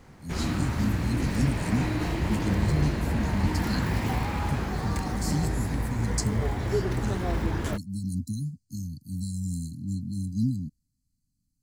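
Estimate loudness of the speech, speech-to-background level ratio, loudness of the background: -32.5 LUFS, -3.0 dB, -29.5 LUFS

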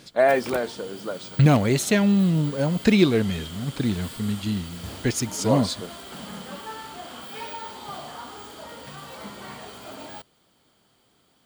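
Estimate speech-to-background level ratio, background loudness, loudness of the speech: 15.5 dB, -38.0 LUFS, -22.5 LUFS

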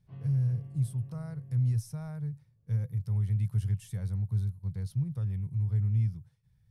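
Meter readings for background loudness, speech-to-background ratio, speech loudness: -47.0 LUFS, 15.0 dB, -32.0 LUFS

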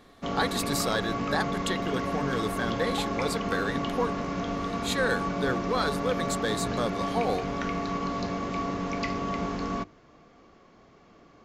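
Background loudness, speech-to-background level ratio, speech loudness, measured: -31.0 LUFS, 0.0 dB, -31.0 LUFS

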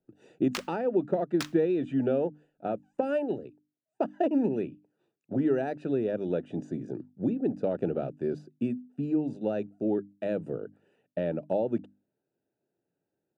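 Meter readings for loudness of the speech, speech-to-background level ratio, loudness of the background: -30.5 LUFS, 10.0 dB, -40.5 LUFS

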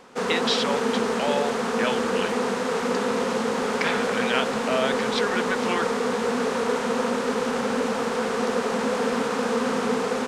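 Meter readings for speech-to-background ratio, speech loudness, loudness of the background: -3.5 dB, -28.5 LUFS, -25.0 LUFS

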